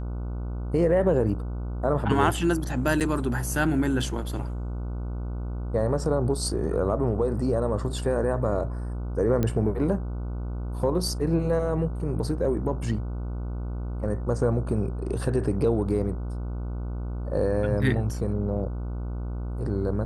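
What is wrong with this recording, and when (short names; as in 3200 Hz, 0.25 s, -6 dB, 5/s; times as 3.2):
buzz 60 Hz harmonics 25 -31 dBFS
3–3.01 gap 7.5 ms
9.43 pop -13 dBFS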